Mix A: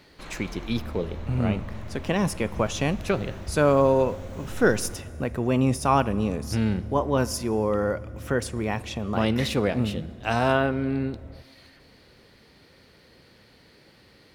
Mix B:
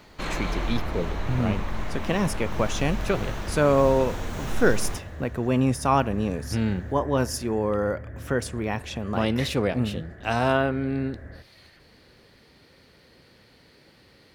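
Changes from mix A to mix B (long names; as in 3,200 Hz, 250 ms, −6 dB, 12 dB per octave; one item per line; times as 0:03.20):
speech: send off
first sound +11.0 dB
second sound: add low-pass with resonance 1,700 Hz, resonance Q 12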